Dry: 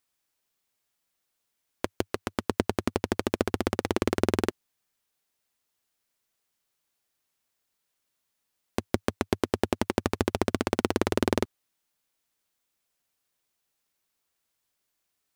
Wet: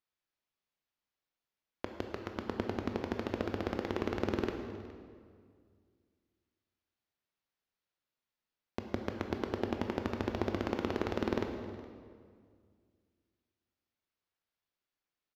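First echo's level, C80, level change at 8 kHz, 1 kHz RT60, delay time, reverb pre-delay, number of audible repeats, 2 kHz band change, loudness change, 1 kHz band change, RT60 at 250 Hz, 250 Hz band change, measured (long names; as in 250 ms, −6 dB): −20.0 dB, 6.5 dB, −19.0 dB, 1.9 s, 416 ms, 15 ms, 1, −8.0 dB, −7.5 dB, −7.5 dB, 2.4 s, −7.0 dB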